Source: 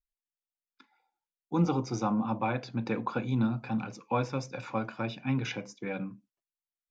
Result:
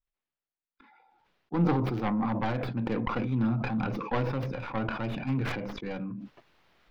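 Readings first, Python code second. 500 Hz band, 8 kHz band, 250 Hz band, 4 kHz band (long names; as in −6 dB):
+1.0 dB, can't be measured, +1.5 dB, −0.5 dB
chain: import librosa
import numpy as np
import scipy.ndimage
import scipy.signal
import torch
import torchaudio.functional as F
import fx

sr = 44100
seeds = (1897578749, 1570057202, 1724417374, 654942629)

y = fx.tracing_dist(x, sr, depth_ms=0.45)
y = fx.air_absorb(y, sr, metres=330.0)
y = fx.sustainer(y, sr, db_per_s=29.0)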